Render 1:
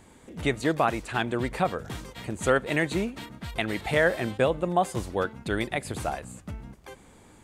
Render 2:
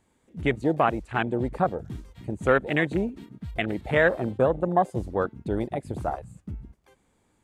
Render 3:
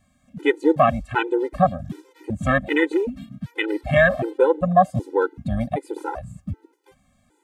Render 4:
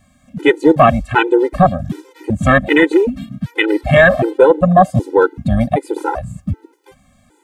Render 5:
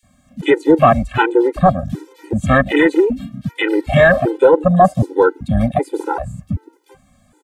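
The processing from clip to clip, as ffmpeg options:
-af "afwtdn=0.0355,volume=2dB"
-af "afftfilt=real='re*gt(sin(2*PI*1.3*pts/sr)*(1-2*mod(floor(b*sr/1024/260),2)),0)':imag='im*gt(sin(2*PI*1.3*pts/sr)*(1-2*mod(floor(b*sr/1024/260),2)),0)':win_size=1024:overlap=0.75,volume=7.5dB"
-af "apsyclip=11dB,volume=-1.5dB"
-filter_complex "[0:a]acrossover=split=2400[a][b];[a]adelay=30[c];[c][b]amix=inputs=2:normalize=0,volume=-1dB"

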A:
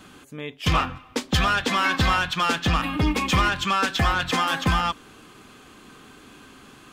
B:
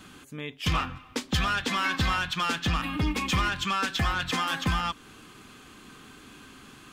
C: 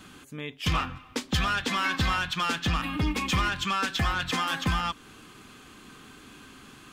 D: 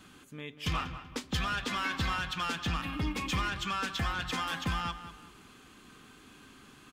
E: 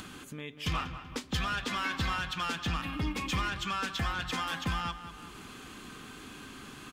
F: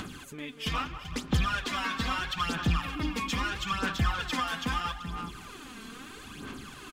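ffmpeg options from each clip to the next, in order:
-filter_complex "[0:a]equalizer=f=590:t=o:w=1.5:g=-5,asplit=2[a][b];[b]acompressor=threshold=-31dB:ratio=6,volume=0.5dB[c];[a][c]amix=inputs=2:normalize=0,volume=-6.5dB"
-af anull
-filter_complex "[0:a]asplit=2[a][b];[b]adelay=191,lowpass=f=3.8k:p=1,volume=-11.5dB,asplit=2[c][d];[d]adelay=191,lowpass=f=3.8k:p=1,volume=0.36,asplit=2[e][f];[f]adelay=191,lowpass=f=3.8k:p=1,volume=0.36,asplit=2[g][h];[h]adelay=191,lowpass=f=3.8k:p=1,volume=0.36[i];[a][c][e][g][i]amix=inputs=5:normalize=0,volume=-6dB"
-af "acompressor=mode=upward:threshold=-37dB:ratio=2.5"
-af "aecho=1:1:387:0.224,aphaser=in_gain=1:out_gain=1:delay=4.5:decay=0.59:speed=0.77:type=sinusoidal"

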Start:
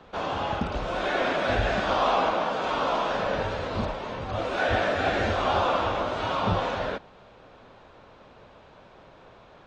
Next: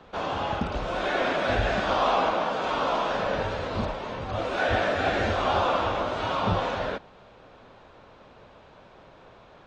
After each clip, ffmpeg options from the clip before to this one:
-af anull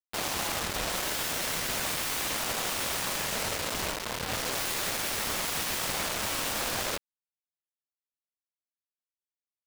-af "aeval=exprs='0.0398*(abs(mod(val(0)/0.0398+3,4)-2)-1)':c=same,acrusher=bits=4:mix=0:aa=0.000001"

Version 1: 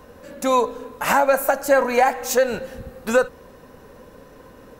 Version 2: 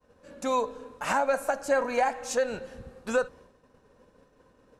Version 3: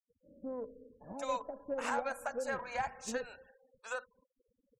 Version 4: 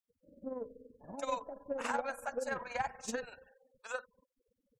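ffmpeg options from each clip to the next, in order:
-af "lowpass=f=9.8k:w=0.5412,lowpass=f=9.8k:w=1.3066,agate=range=-33dB:threshold=-38dB:ratio=3:detection=peak,bandreject=f=2k:w=21,volume=-8.5dB"
-filter_complex "[0:a]acrossover=split=590[a][b];[b]adelay=770[c];[a][c]amix=inputs=2:normalize=0,afftfilt=real='re*gte(hypot(re,im),0.00501)':imag='im*gte(hypot(re,im),0.00501)':win_size=1024:overlap=0.75,aeval=exprs='0.188*(cos(1*acos(clip(val(0)/0.188,-1,1)))-cos(1*PI/2))+0.00531*(cos(7*acos(clip(val(0)/0.188,-1,1)))-cos(7*PI/2))':c=same,volume=-7.5dB"
-af "tremolo=f=21:d=0.621,volume=2.5dB"

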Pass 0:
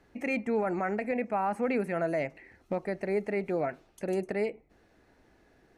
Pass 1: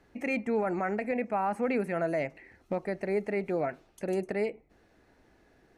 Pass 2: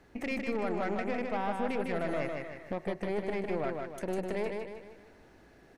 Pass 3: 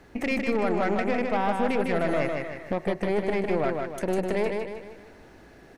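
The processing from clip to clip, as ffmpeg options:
-af anull
-filter_complex "[0:a]acompressor=threshold=-40dB:ratio=2,aeval=exprs='(tanh(50.1*val(0)+0.65)-tanh(0.65))/50.1':c=same,asplit=2[a][b];[b]aecho=0:1:154|308|462|616|770|924:0.631|0.284|0.128|0.0575|0.0259|0.0116[c];[a][c]amix=inputs=2:normalize=0,volume=6.5dB"
-af "asoftclip=type=hard:threshold=-21.5dB,volume=7.5dB"

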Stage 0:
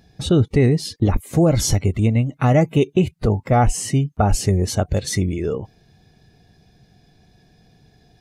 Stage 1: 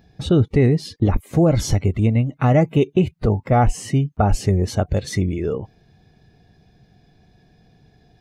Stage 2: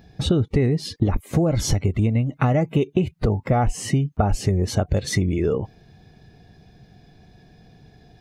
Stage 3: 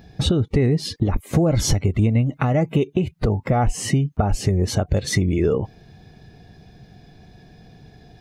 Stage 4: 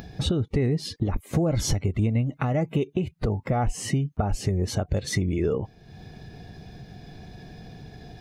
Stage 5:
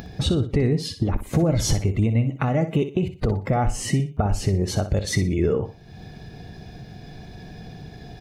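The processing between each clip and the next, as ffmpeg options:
-af "equalizer=f=10k:w=0.46:g=-9"
-af "acompressor=threshold=-20dB:ratio=6,volume=4dB"
-af "alimiter=limit=-11.5dB:level=0:latency=1:release=337,volume=3.5dB"
-af "acompressor=mode=upward:threshold=-27dB:ratio=2.5,volume=-5.5dB"
-af "aecho=1:1:61|122|183:0.282|0.0817|0.0237,volume=3dB"

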